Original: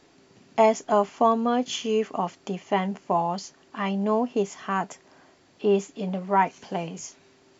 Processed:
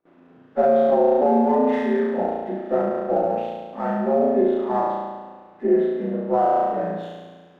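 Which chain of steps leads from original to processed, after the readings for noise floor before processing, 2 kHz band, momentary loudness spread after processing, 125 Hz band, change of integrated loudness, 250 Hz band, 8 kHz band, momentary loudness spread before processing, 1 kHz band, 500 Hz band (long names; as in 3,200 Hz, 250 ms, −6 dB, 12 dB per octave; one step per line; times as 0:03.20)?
−59 dBFS, −2.0 dB, 13 LU, −1.5 dB, +4.5 dB, +5.0 dB, can't be measured, 13 LU, +2.5 dB, +6.0 dB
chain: partials spread apart or drawn together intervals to 81%
on a send: flutter between parallel walls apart 6 metres, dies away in 1.4 s
on the sum: brickwall limiter −12.5 dBFS, peak gain reduction 7.5 dB
noise gate with hold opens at −49 dBFS
Bessel low-pass filter 980 Hz, order 2
low-shelf EQ 85 Hz −11.5 dB
mains-hum notches 50/100/150/200 Hz
windowed peak hold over 3 samples
level +4.5 dB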